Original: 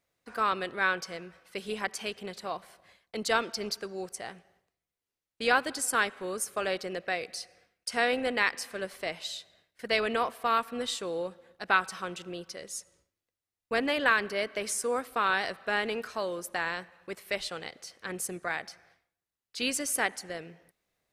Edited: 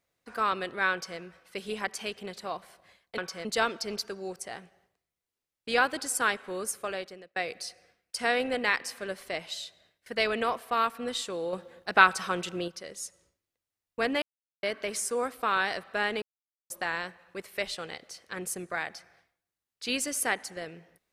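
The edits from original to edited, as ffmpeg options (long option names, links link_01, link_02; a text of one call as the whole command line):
ffmpeg -i in.wav -filter_complex "[0:a]asplit=10[link_01][link_02][link_03][link_04][link_05][link_06][link_07][link_08][link_09][link_10];[link_01]atrim=end=3.182[link_11];[link_02]atrim=start=0.918:end=1.192[link_12];[link_03]atrim=start=3.178:end=7.09,asetpts=PTS-STARTPTS,afade=type=out:start_time=3.252:duration=0.66[link_13];[link_04]atrim=start=7.09:end=11.262,asetpts=PTS-STARTPTS,afade=type=in:duration=0.004:curve=hsin[link_14];[link_05]atrim=start=11.258:end=12.412,asetpts=PTS-STARTPTS,volume=6dB[link_15];[link_06]atrim=start=12.408:end=13.95,asetpts=PTS-STARTPTS,afade=type=out:start_time=1.538:duration=0.004:curve=hsin[link_16];[link_07]atrim=start=13.95:end=14.36,asetpts=PTS-STARTPTS,volume=0[link_17];[link_08]atrim=start=14.36:end=15.95,asetpts=PTS-STARTPTS,afade=type=in:duration=0.004:curve=hsin,afade=type=out:start_time=1.586:duration=0.004:curve=hsin[link_18];[link_09]atrim=start=15.95:end=16.43,asetpts=PTS-STARTPTS,volume=0[link_19];[link_10]atrim=start=16.43,asetpts=PTS-STARTPTS,afade=type=in:duration=0.004:curve=hsin[link_20];[link_11][link_12]acrossfade=duration=0.004:curve1=hsin:curve2=hsin[link_21];[link_13][link_14]concat=n=2:v=0:a=1[link_22];[link_21][link_22]acrossfade=duration=0.004:curve1=hsin:curve2=hsin[link_23];[link_23][link_15]acrossfade=duration=0.004:curve1=hsin:curve2=hsin[link_24];[link_16][link_17][link_18][link_19][link_20]concat=n=5:v=0:a=1[link_25];[link_24][link_25]acrossfade=duration=0.004:curve1=hsin:curve2=hsin" out.wav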